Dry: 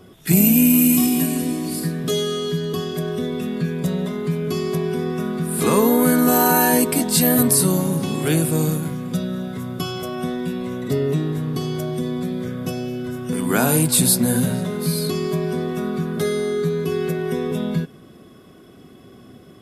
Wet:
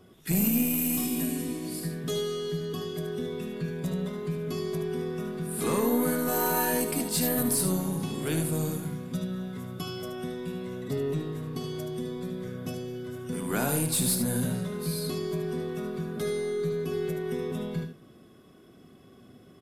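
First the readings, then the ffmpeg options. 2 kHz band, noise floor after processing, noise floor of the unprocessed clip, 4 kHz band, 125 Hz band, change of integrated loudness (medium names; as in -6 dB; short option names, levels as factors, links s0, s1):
-9.5 dB, -54 dBFS, -46 dBFS, -9.5 dB, -9.5 dB, -10.0 dB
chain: -filter_complex "[0:a]aeval=exprs='(tanh(2.82*val(0)+0.15)-tanh(0.15))/2.82':c=same,asplit=2[s0][s1];[s1]aecho=0:1:75:0.422[s2];[s0][s2]amix=inputs=2:normalize=0,volume=0.355"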